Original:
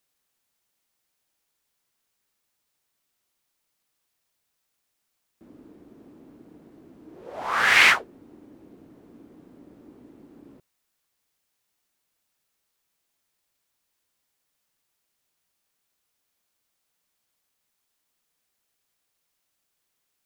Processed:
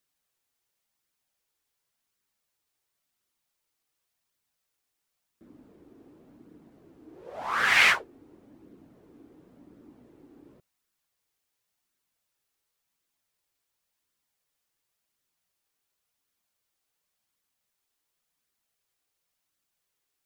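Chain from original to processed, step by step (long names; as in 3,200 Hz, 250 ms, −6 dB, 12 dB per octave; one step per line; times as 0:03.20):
flanger 0.92 Hz, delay 0.5 ms, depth 2.3 ms, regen −50%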